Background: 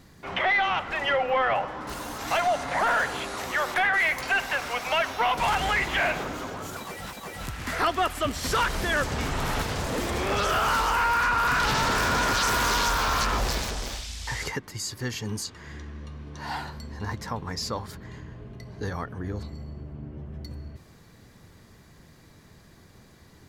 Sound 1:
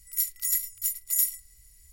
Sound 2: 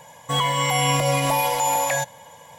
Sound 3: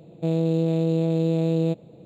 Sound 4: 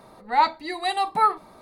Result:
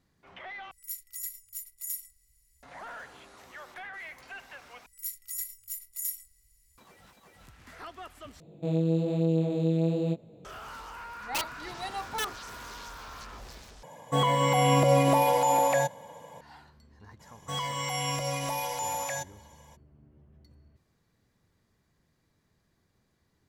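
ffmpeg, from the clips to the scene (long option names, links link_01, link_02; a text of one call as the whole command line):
ffmpeg -i bed.wav -i cue0.wav -i cue1.wav -i cue2.wav -i cue3.wav -filter_complex "[1:a]asplit=2[link_01][link_02];[2:a]asplit=2[link_03][link_04];[0:a]volume=-19.5dB[link_05];[link_02]asplit=2[link_06][link_07];[link_07]adelay=23,volume=-10dB[link_08];[link_06][link_08]amix=inputs=2:normalize=0[link_09];[3:a]flanger=delay=18:depth=7.1:speed=1.1[link_10];[4:a]aeval=exprs='(mod(4.22*val(0)+1,2)-1)/4.22':channel_layout=same[link_11];[link_03]equalizer=frequency=330:width_type=o:width=3:gain=13.5[link_12];[link_04]equalizer=frequency=5800:width=5.4:gain=9.5[link_13];[link_05]asplit=5[link_14][link_15][link_16][link_17][link_18];[link_14]atrim=end=0.714[link_19];[link_01]atrim=end=1.92,asetpts=PTS-STARTPTS,volume=-11.5dB[link_20];[link_15]atrim=start=2.626:end=4.864[link_21];[link_09]atrim=end=1.92,asetpts=PTS-STARTPTS,volume=-10dB[link_22];[link_16]atrim=start=6.776:end=8.404[link_23];[link_10]atrim=end=2.05,asetpts=PTS-STARTPTS,volume=-2.5dB[link_24];[link_17]atrim=start=10.446:end=13.834[link_25];[link_12]atrim=end=2.58,asetpts=PTS-STARTPTS,volume=-9.5dB[link_26];[link_18]atrim=start=16.406[link_27];[link_11]atrim=end=1.61,asetpts=PTS-STARTPTS,volume=-12.5dB,afade=type=in:duration=0.004:curve=hsin,afade=type=out:start_time=1.606:duration=0.004:curve=hsin,adelay=10970[link_28];[link_13]atrim=end=2.58,asetpts=PTS-STARTPTS,volume=-11.5dB,afade=type=in:duration=0.02,afade=type=out:start_time=2.56:duration=0.02,adelay=17190[link_29];[link_19][link_20]acrossfade=duration=0.004:curve1=hsin:curve2=hsin[link_30];[link_30][link_21]acrossfade=duration=0.004:curve1=hsin:curve2=hsin[link_31];[link_31][link_22]acrossfade=duration=0.004:curve1=hsin:curve2=hsin[link_32];[link_32][link_23]acrossfade=duration=0.004:curve1=hsin:curve2=hsin[link_33];[link_33][link_24]acrossfade=duration=0.004:curve1=hsin:curve2=hsin[link_34];[link_34][link_25]acrossfade=duration=0.004:curve1=hsin:curve2=hsin[link_35];[link_35][link_26]acrossfade=duration=0.004:curve1=hsin:curve2=hsin[link_36];[link_36][link_27]acrossfade=duration=0.004:curve1=hsin:curve2=hsin[link_37];[link_37][link_28][link_29]amix=inputs=3:normalize=0" out.wav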